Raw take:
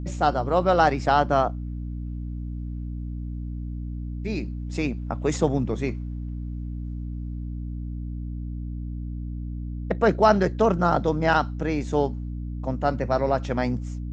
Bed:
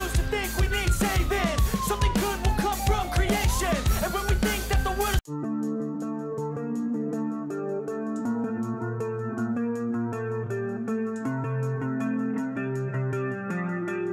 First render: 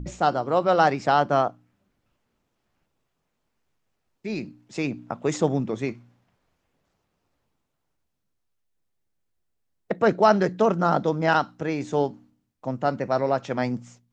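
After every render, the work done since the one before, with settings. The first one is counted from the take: de-hum 60 Hz, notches 5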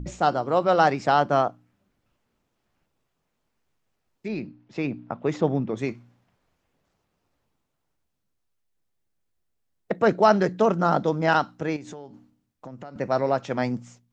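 4.28–5.77 s: distance through air 190 m; 11.76–12.96 s: compression 12:1, threshold -35 dBFS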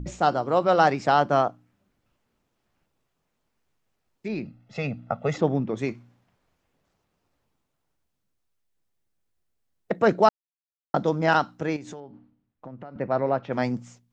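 4.45–5.38 s: comb 1.5 ms, depth 97%; 10.29–10.94 s: mute; 12.00–13.53 s: distance through air 320 m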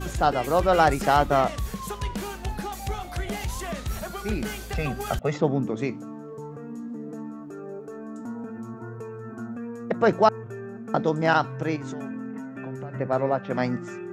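add bed -7 dB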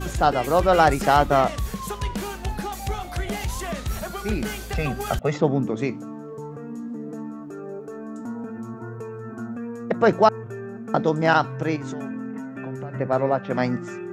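trim +2.5 dB; peak limiter -3 dBFS, peak gain reduction 1 dB

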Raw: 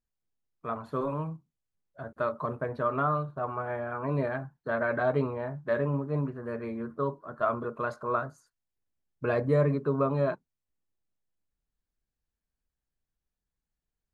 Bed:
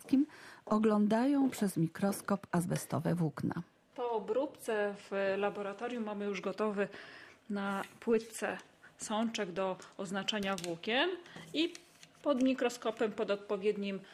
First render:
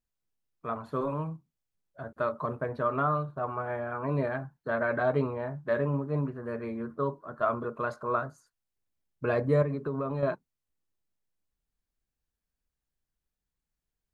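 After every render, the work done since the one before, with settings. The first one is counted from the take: 9.62–10.23 s: compression 4:1, threshold -28 dBFS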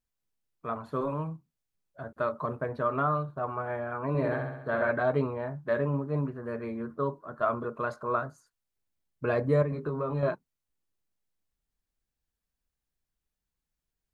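4.08–4.91 s: flutter echo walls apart 11.4 m, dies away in 0.89 s; 9.70–10.29 s: doubling 20 ms -5 dB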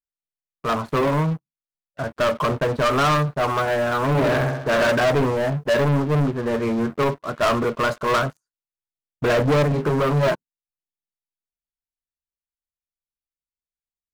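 waveshaping leveller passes 5; upward expansion 1.5:1, over -31 dBFS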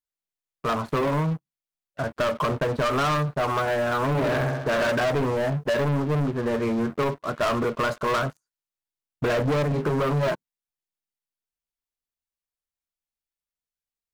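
compression, threshold -22 dBFS, peak gain reduction 6 dB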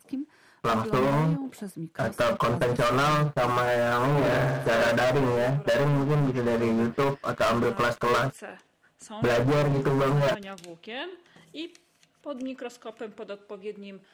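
add bed -4.5 dB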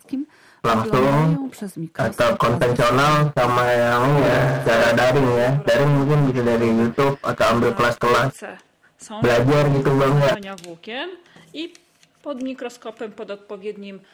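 trim +7 dB

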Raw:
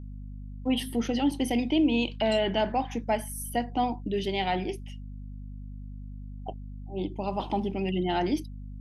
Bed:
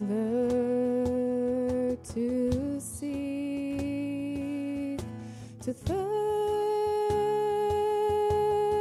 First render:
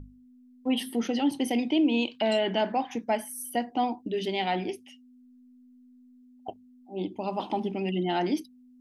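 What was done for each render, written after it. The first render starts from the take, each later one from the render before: hum notches 50/100/150/200 Hz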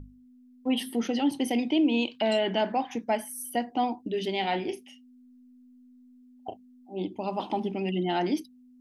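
4.40–6.94 s: doubling 35 ms -9 dB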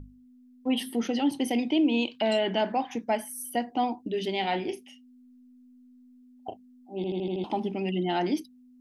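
6.96 s: stutter in place 0.08 s, 6 plays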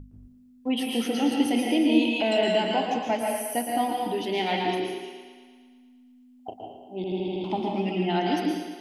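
thinning echo 114 ms, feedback 65%, high-pass 240 Hz, level -8 dB; plate-style reverb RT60 0.67 s, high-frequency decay 0.95×, pre-delay 120 ms, DRR 0.5 dB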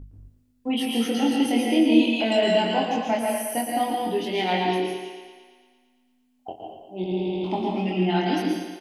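doubling 22 ms -2.5 dB; delay 82 ms -21 dB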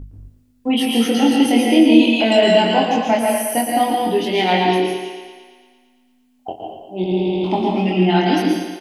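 trim +7.5 dB; peak limiter -1 dBFS, peak gain reduction 2 dB

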